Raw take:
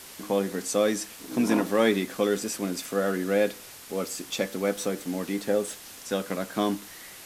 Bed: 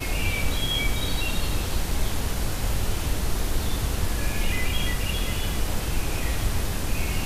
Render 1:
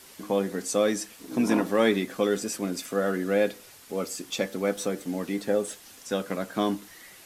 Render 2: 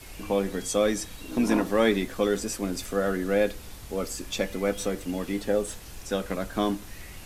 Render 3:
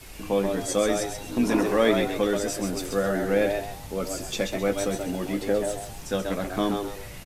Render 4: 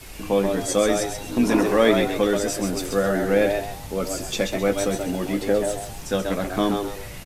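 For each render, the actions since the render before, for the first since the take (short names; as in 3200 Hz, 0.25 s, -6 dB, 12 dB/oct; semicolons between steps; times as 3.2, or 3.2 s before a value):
denoiser 6 dB, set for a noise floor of -45 dBFS
add bed -18 dB
doubler 16 ms -11.5 dB; frequency-shifting echo 0.132 s, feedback 32%, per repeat +95 Hz, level -5.5 dB
gain +3.5 dB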